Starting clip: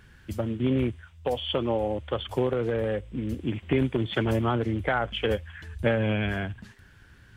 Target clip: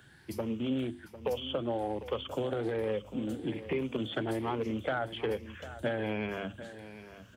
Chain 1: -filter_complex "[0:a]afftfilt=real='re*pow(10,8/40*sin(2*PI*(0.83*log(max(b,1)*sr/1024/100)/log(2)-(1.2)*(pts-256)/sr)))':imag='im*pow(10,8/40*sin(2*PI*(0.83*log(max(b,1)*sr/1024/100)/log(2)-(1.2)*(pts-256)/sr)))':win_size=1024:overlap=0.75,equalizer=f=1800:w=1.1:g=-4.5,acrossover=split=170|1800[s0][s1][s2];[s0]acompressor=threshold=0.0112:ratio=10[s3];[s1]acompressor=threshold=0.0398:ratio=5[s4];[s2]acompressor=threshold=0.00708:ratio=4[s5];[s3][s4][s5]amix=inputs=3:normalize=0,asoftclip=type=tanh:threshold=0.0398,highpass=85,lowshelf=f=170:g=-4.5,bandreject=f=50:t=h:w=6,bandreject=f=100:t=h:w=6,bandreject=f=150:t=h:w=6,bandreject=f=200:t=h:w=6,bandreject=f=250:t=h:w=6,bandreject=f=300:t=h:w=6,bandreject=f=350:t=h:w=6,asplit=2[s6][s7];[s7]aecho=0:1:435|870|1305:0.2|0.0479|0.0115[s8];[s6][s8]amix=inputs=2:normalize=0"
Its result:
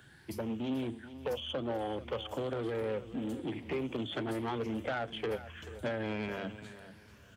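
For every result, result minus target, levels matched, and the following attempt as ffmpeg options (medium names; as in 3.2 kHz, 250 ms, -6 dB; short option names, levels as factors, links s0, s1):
echo 315 ms early; saturation: distortion +12 dB
-filter_complex "[0:a]afftfilt=real='re*pow(10,8/40*sin(2*PI*(0.83*log(max(b,1)*sr/1024/100)/log(2)-(1.2)*(pts-256)/sr)))':imag='im*pow(10,8/40*sin(2*PI*(0.83*log(max(b,1)*sr/1024/100)/log(2)-(1.2)*(pts-256)/sr)))':win_size=1024:overlap=0.75,equalizer=f=1800:w=1.1:g=-4.5,acrossover=split=170|1800[s0][s1][s2];[s0]acompressor=threshold=0.0112:ratio=10[s3];[s1]acompressor=threshold=0.0398:ratio=5[s4];[s2]acompressor=threshold=0.00708:ratio=4[s5];[s3][s4][s5]amix=inputs=3:normalize=0,asoftclip=type=tanh:threshold=0.0398,highpass=85,lowshelf=f=170:g=-4.5,bandreject=f=50:t=h:w=6,bandreject=f=100:t=h:w=6,bandreject=f=150:t=h:w=6,bandreject=f=200:t=h:w=6,bandreject=f=250:t=h:w=6,bandreject=f=300:t=h:w=6,bandreject=f=350:t=h:w=6,asplit=2[s6][s7];[s7]aecho=0:1:750|1500|2250:0.2|0.0479|0.0115[s8];[s6][s8]amix=inputs=2:normalize=0"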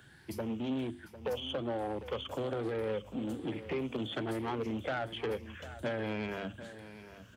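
saturation: distortion +12 dB
-filter_complex "[0:a]afftfilt=real='re*pow(10,8/40*sin(2*PI*(0.83*log(max(b,1)*sr/1024/100)/log(2)-(1.2)*(pts-256)/sr)))':imag='im*pow(10,8/40*sin(2*PI*(0.83*log(max(b,1)*sr/1024/100)/log(2)-(1.2)*(pts-256)/sr)))':win_size=1024:overlap=0.75,equalizer=f=1800:w=1.1:g=-4.5,acrossover=split=170|1800[s0][s1][s2];[s0]acompressor=threshold=0.0112:ratio=10[s3];[s1]acompressor=threshold=0.0398:ratio=5[s4];[s2]acompressor=threshold=0.00708:ratio=4[s5];[s3][s4][s5]amix=inputs=3:normalize=0,asoftclip=type=tanh:threshold=0.112,highpass=85,lowshelf=f=170:g=-4.5,bandreject=f=50:t=h:w=6,bandreject=f=100:t=h:w=6,bandreject=f=150:t=h:w=6,bandreject=f=200:t=h:w=6,bandreject=f=250:t=h:w=6,bandreject=f=300:t=h:w=6,bandreject=f=350:t=h:w=6,asplit=2[s6][s7];[s7]aecho=0:1:750|1500|2250:0.2|0.0479|0.0115[s8];[s6][s8]amix=inputs=2:normalize=0"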